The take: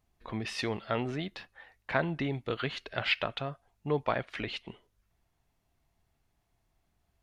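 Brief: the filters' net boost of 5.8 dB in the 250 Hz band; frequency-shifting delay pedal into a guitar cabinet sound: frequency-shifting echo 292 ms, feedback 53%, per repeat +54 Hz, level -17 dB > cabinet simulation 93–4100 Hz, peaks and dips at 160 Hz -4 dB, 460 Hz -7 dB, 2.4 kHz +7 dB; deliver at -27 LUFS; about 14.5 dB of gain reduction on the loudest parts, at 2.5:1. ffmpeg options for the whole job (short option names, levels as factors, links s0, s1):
-filter_complex "[0:a]equalizer=f=250:t=o:g=8.5,acompressor=threshold=0.00562:ratio=2.5,asplit=6[s0][s1][s2][s3][s4][s5];[s1]adelay=292,afreqshift=54,volume=0.141[s6];[s2]adelay=584,afreqshift=108,volume=0.075[s7];[s3]adelay=876,afreqshift=162,volume=0.0398[s8];[s4]adelay=1168,afreqshift=216,volume=0.0211[s9];[s5]adelay=1460,afreqshift=270,volume=0.0111[s10];[s0][s6][s7][s8][s9][s10]amix=inputs=6:normalize=0,highpass=93,equalizer=f=160:t=q:w=4:g=-4,equalizer=f=460:t=q:w=4:g=-7,equalizer=f=2400:t=q:w=4:g=7,lowpass=f=4100:w=0.5412,lowpass=f=4100:w=1.3066,volume=7.08"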